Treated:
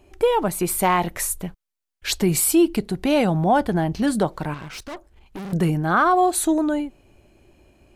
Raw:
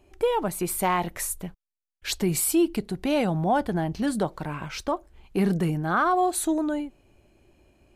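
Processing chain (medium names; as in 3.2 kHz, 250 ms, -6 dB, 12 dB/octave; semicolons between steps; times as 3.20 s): 4.54–5.53 s: valve stage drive 36 dB, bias 0.8; trim +5 dB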